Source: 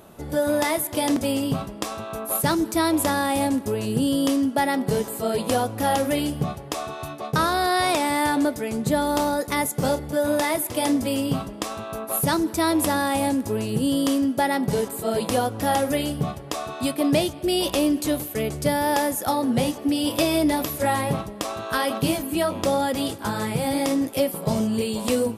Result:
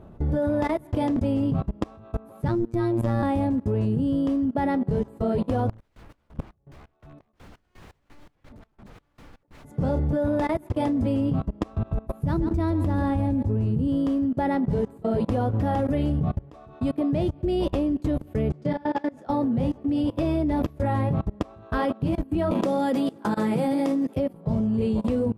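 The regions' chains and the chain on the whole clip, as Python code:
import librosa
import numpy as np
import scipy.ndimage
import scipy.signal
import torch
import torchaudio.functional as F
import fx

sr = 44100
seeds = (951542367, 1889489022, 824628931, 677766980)

y = fx.chain(x, sr, fx.low_shelf(hz=280.0, db=6.0),
    fx.robotise(hz=115.0), at=(2.48, 3.23))
y = fx.chain(y, sr, fx.overflow_wrap(gain_db=26.0),
    fx.tremolo_db(hz=2.8, depth_db=32), at=(5.69, 9.65))
y = fx.chain(y, sr, fx.low_shelf(hz=150.0, db=11.5),
    fx.echo_single(ms=140, db=-11.0), at=(11.73, 13.88))
y = fx.chain(y, sr, fx.bandpass_edges(low_hz=170.0, high_hz=4900.0),
    fx.high_shelf(hz=2200.0, db=5.5),
    fx.detune_double(cents=32), at=(18.52, 19.3))
y = fx.chain(y, sr, fx.highpass(hz=190.0, slope=24),
    fx.high_shelf(hz=4400.0, db=11.0),
    fx.band_squash(depth_pct=70), at=(22.51, 24.16))
y = fx.riaa(y, sr, side='playback')
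y = fx.level_steps(y, sr, step_db=23)
y = fx.high_shelf(y, sr, hz=2800.0, db=-9.0)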